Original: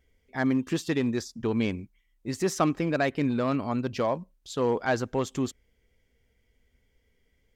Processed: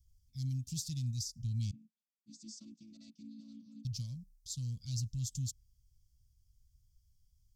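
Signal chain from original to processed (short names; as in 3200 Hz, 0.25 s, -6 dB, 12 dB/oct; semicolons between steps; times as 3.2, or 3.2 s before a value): 1.71–3.85 chord vocoder major triad, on A3; elliptic band-stop 130–5000 Hz, stop band 50 dB; gain +1.5 dB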